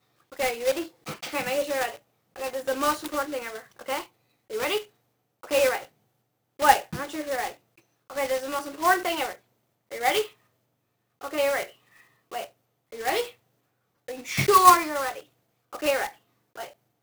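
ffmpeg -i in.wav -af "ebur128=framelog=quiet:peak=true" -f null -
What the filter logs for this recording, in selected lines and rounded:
Integrated loudness:
  I:         -25.8 LUFS
  Threshold: -37.3 LUFS
Loudness range:
  LRA:         7.9 LU
  Threshold: -47.6 LUFS
  LRA low:   -31.7 LUFS
  LRA high:  -23.8 LUFS
True peak:
  Peak:       -2.5 dBFS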